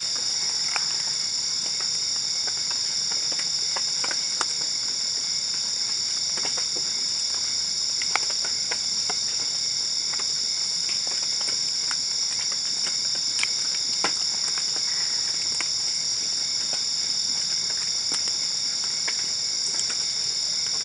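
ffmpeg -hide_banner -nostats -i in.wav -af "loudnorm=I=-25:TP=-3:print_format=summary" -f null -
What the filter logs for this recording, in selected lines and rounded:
Input Integrated:    -22.7 LUFS
Input True Peak:      -4.2 dBTP
Input LRA:             0.6 LU
Input Threshold:     -32.7 LUFS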